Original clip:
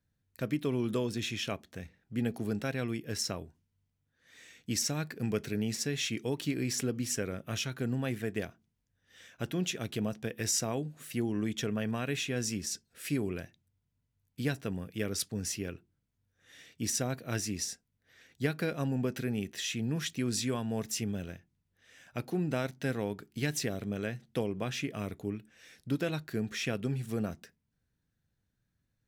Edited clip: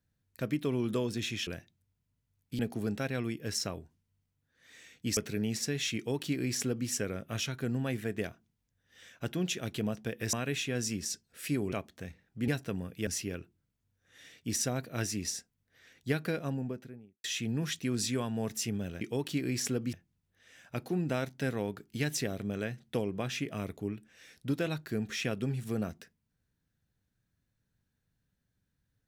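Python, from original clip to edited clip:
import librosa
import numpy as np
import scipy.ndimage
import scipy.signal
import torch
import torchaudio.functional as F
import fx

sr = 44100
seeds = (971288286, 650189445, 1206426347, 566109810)

y = fx.studio_fade_out(x, sr, start_s=18.53, length_s=1.05)
y = fx.edit(y, sr, fx.swap(start_s=1.47, length_s=0.76, other_s=13.33, other_length_s=1.12),
    fx.cut(start_s=4.81, length_s=0.54),
    fx.duplicate(start_s=6.14, length_s=0.92, to_s=21.35),
    fx.cut(start_s=10.51, length_s=1.43),
    fx.cut(start_s=15.04, length_s=0.37), tone=tone)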